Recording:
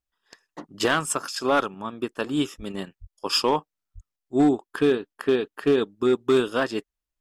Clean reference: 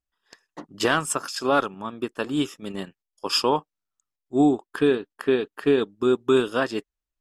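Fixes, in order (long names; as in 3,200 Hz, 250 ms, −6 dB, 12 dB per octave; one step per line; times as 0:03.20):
clipped peaks rebuilt −13 dBFS
0:02.57–0:02.69: high-pass filter 140 Hz 24 dB per octave
0:03.00–0:03.12: high-pass filter 140 Hz 24 dB per octave
0:03.94–0:04.06: high-pass filter 140 Hz 24 dB per octave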